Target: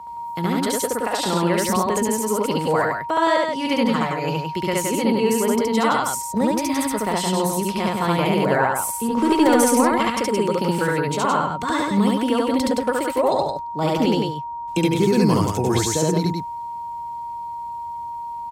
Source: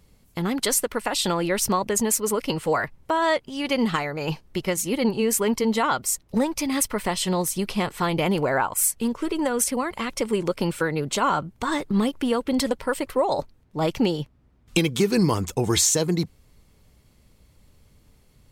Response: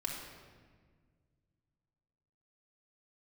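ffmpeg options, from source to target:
-filter_complex "[0:a]aeval=exprs='val(0)+0.02*sin(2*PI*940*n/s)':c=same,acrossover=split=120|1200[a][b][c];[c]alimiter=limit=-18.5dB:level=0:latency=1:release=431[d];[a][b][d]amix=inputs=3:normalize=0,highpass=64,asettb=1/sr,asplit=3[e][f][g];[e]atrim=end=9.104[h];[f]atrim=start=9.1:end=10.03,asetpts=PTS-STARTPTS,afade=t=in:d=0.004:c=qsin,afade=t=out:st=0.926:d=0.004:c=qsin,aeval=exprs='0.299*(cos(1*acos(clip(val(0)/0.299,-1,1)))-cos(1*PI/2))+0.133*(cos(5*acos(clip(val(0)/0.299,-1,1)))-cos(5*PI/2))+0.0531*(cos(7*acos(clip(val(0)/0.299,-1,1)))-cos(7*PI/2))+0.00531*(cos(8*acos(clip(val(0)/0.299,-1,1)))-cos(8*PI/2))':c=same[i];[g]atrim=start=10.026[j];[h][i]acrossfade=d=0.004:c1=hsin:c2=qsin[k];[k][j]acrossfade=d=0.004:c1=qsin:c2=hsin,aecho=1:1:69.97|169.1:1|0.631"

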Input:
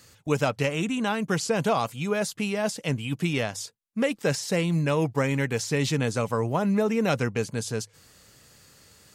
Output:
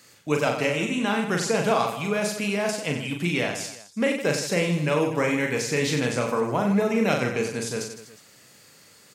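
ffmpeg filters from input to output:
-filter_complex "[0:a]highpass=160,equalizer=f=2.2k:t=o:w=0.36:g=4,asplit=2[a][b];[b]aecho=0:1:40|92|159.6|247.5|361.7:0.631|0.398|0.251|0.158|0.1[c];[a][c]amix=inputs=2:normalize=0"

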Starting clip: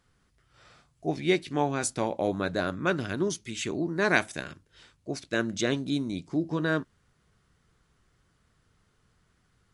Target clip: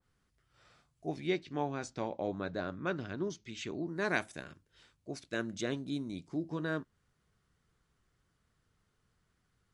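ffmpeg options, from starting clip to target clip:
-filter_complex "[0:a]asettb=1/sr,asplit=3[a][b][c];[a]atrim=end=1.274[d];[b]atrim=start=1.27:end=3.87,asetpts=PTS-STARTPTS,afade=t=in:d=0.004:c=qsin,afade=t=out:st=2.596:d=0.004:c=qsin,lowpass=f=6.3k:w=0.5412,lowpass=f=6.3k:w=1.3066[e];[c]atrim=start=3.866[f];[d][e]acrossfade=d=0.004:c1=hsin:c2=qsin[g];[g][f]acrossfade=d=0.004:c1=qsin:c2=hsin,adynamicequalizer=threshold=0.01:dfrequency=1600:dqfactor=0.7:tfrequency=1600:tqfactor=0.7:attack=5:release=100:ratio=0.375:range=2.5:mode=cutabove:tftype=highshelf,volume=-8dB"

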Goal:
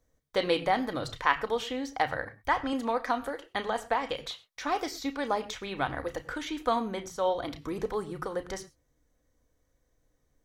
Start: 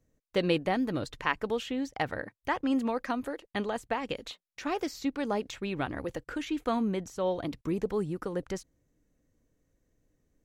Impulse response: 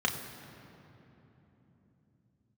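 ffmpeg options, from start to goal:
-filter_complex "[0:a]equalizer=f=250:w=0.59:g=-10.5,asplit=2[a][b];[1:a]atrim=start_sample=2205,afade=t=out:st=0.18:d=0.01,atrim=end_sample=8379[c];[b][c]afir=irnorm=-1:irlink=0,volume=-12dB[d];[a][d]amix=inputs=2:normalize=0,asettb=1/sr,asplit=3[e][f][g];[e]atrim=end=2.194[h];[f]atrim=start=2.19:end=2.73,asetpts=PTS-STARTPTS,afade=t=in:d=0.004:c=qsin,afade=t=out:st=0.536:d=0.004:c=qsin,asubboost=boost=11:cutoff=170[i];[g]atrim=start=2.726[j];[h][i]acrossfade=d=0.004:c1=hsin:c2=qsin[k];[k][j]acrossfade=d=0.004:c1=qsin:c2=hsin,volume=4dB"

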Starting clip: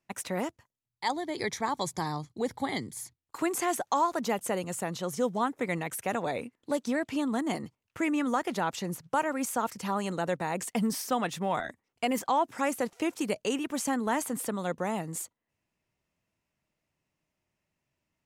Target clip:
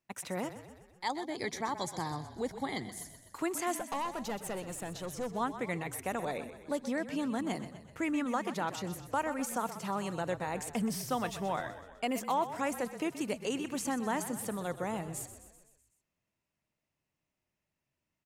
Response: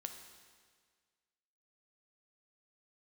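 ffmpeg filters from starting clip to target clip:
-filter_complex "[0:a]asettb=1/sr,asplit=3[a][b][c];[a]atrim=end=3.794[d];[b]atrim=start=3.79:end=5.34,asetpts=PTS-STARTPTS,afade=t=in:d=0.004:c=qsin,afade=t=out:st=1.546:d=0.004:c=qsin,aeval=exprs='(tanh(22.4*val(0)+0.3)-tanh(0.3))/22.4':c=same[e];[c]atrim=start=5.336[f];[d][e]acrossfade=d=0.004:c1=hsin:c2=qsin[g];[g][f]acrossfade=d=0.004:c1=qsin:c2=hsin,asplit=2[h][i];[i]asplit=6[j][k][l][m][n][o];[j]adelay=126,afreqshift=-36,volume=-12dB[p];[k]adelay=252,afreqshift=-72,volume=-16.9dB[q];[l]adelay=378,afreqshift=-108,volume=-21.8dB[r];[m]adelay=504,afreqshift=-144,volume=-26.6dB[s];[n]adelay=630,afreqshift=-180,volume=-31.5dB[t];[o]adelay=756,afreqshift=-216,volume=-36.4dB[u];[p][q][r][s][t][u]amix=inputs=6:normalize=0[v];[h][v]amix=inputs=2:normalize=0,volume=-4.5dB"

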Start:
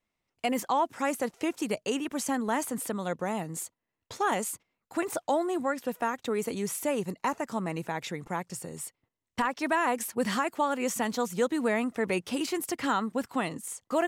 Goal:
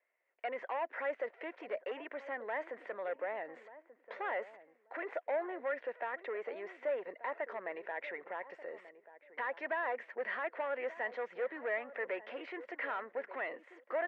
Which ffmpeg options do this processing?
-filter_complex "[0:a]asoftclip=type=tanh:threshold=-26.5dB,alimiter=level_in=9dB:limit=-24dB:level=0:latency=1:release=76,volume=-9dB,highpass=f=480:w=0.5412,highpass=f=480:w=1.3066,equalizer=f=570:t=q:w=4:g=4,equalizer=f=840:t=q:w=4:g=-6,equalizer=f=1.2k:t=q:w=4:g=-7,equalizer=f=1.9k:t=q:w=4:g=7,lowpass=f=2.1k:w=0.5412,lowpass=f=2.1k:w=1.3066,asplit=2[a][b];[b]adelay=1185,lowpass=f=940:p=1,volume=-14dB,asplit=2[c][d];[d]adelay=1185,lowpass=f=940:p=1,volume=0.21[e];[c][e]amix=inputs=2:normalize=0[f];[a][f]amix=inputs=2:normalize=0,volume=4dB"

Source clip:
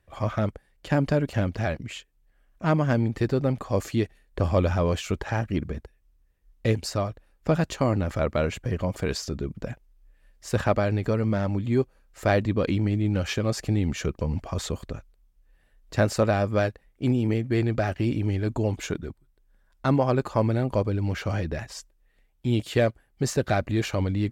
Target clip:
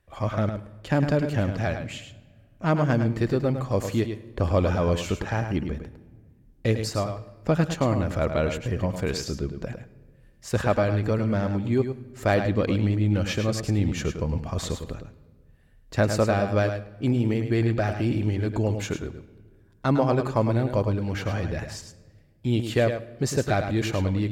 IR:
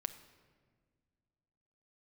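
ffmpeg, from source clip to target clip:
-filter_complex "[0:a]asplit=2[a][b];[1:a]atrim=start_sample=2205,adelay=105[c];[b][c]afir=irnorm=-1:irlink=0,volume=-6.5dB[d];[a][d]amix=inputs=2:normalize=0"

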